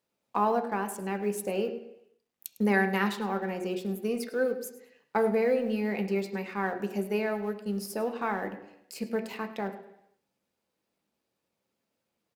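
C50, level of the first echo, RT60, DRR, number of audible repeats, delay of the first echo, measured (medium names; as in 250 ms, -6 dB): 10.5 dB, -16.5 dB, 0.80 s, 5.0 dB, 1, 104 ms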